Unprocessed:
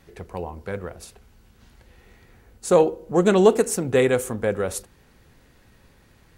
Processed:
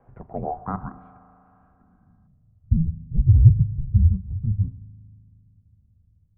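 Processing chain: mistuned SSB -310 Hz 220–3100 Hz; 0.79–2.85 s: high-order bell 610 Hz -15.5 dB; low-pass sweep 760 Hz -> 100 Hz, 1.53–2.56 s; spring tank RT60 3 s, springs 38 ms, chirp 75 ms, DRR 17 dB; 0.42–2.27 s: time-frequency box 710–1700 Hz +12 dB

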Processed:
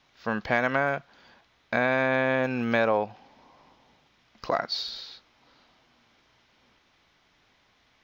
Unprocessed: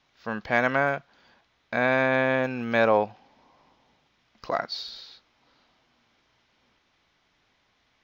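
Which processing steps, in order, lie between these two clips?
compression 3:1, threshold -25 dBFS, peak gain reduction 7.5 dB; trim +3.5 dB

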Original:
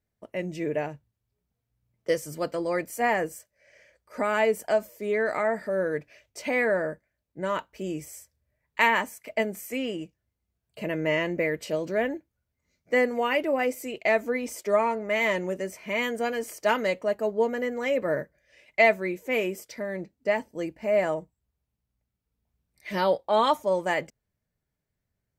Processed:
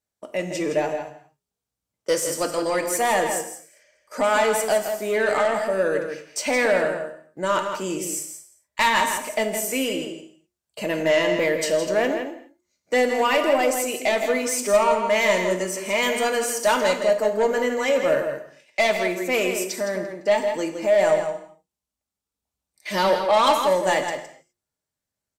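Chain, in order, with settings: de-hum 118.8 Hz, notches 3; gate -54 dBFS, range -10 dB; graphic EQ 500/2000/8000 Hz -3/-7/+6 dB; overdrive pedal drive 18 dB, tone 7.9 kHz, clips at -11 dBFS; echo from a far wall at 28 m, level -7 dB; gated-style reverb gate 280 ms falling, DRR 6.5 dB

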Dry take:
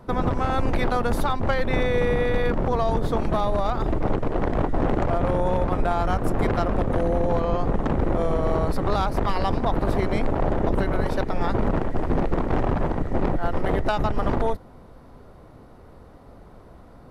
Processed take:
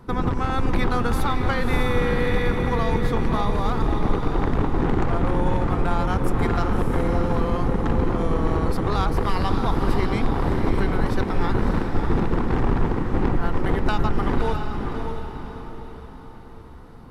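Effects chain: peaking EQ 620 Hz -11.5 dB 0.44 oct; echo that smears into a reverb 609 ms, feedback 44%, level -5 dB; trim +1 dB

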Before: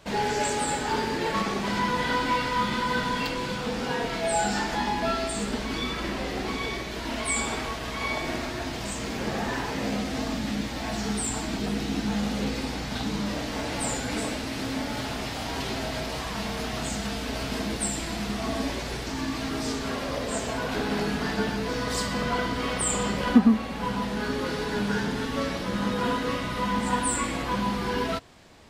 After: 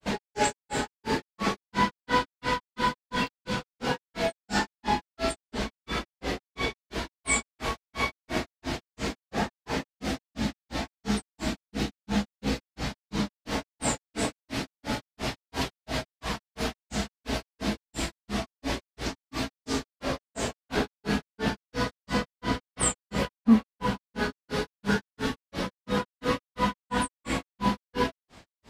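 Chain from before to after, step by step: granulator 190 ms, grains 2.9 per s, spray 18 ms, pitch spread up and down by 0 st; trim +4 dB

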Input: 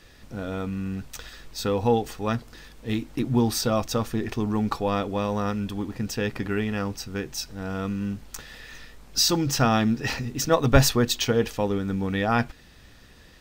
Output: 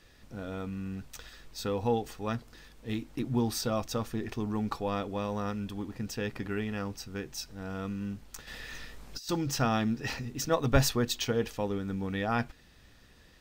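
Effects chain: 8.47–9.29 s: compressor with a negative ratio -29 dBFS, ratio -0.5; trim -7 dB

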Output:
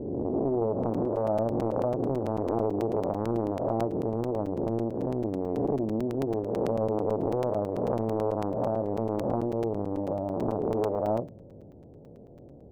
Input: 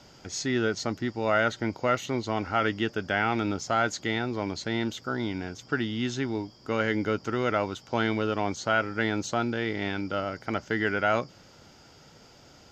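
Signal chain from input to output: reverse spectral sustain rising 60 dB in 1.90 s; steep low-pass 590 Hz 36 dB/octave; bass shelf 150 Hz +5 dB; compression 2.5:1, threshold -28 dBFS, peak gain reduction 6 dB; tilt EQ +2 dB/octave; reverberation RT60 0.35 s, pre-delay 7 ms, DRR 12 dB; crackling interface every 0.11 s, samples 256, zero, from 0.83 s; loudspeaker Doppler distortion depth 0.56 ms; trim +6.5 dB

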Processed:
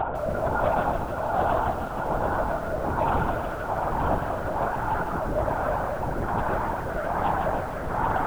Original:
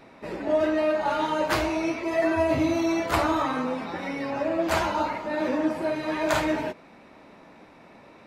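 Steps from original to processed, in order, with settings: spectral gate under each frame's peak -10 dB strong; treble shelf 2.2 kHz +9 dB; de-hum 49.77 Hz, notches 14; Paulstretch 46×, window 1.00 s, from 1.14 s; in parallel at -8 dB: saturation -23 dBFS, distortion -14 dB; on the sum: rotary cabinet horn 1.2 Hz; hard clipper -18 dBFS, distortion -26 dB; feedback echo behind a high-pass 153 ms, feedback 66%, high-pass 1.6 kHz, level -5 dB; on a send at -16 dB: reverberation RT60 1.1 s, pre-delay 136 ms; on the sum: LPC vocoder at 8 kHz whisper; bit-crushed delay 151 ms, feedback 35%, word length 7-bit, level -9.5 dB

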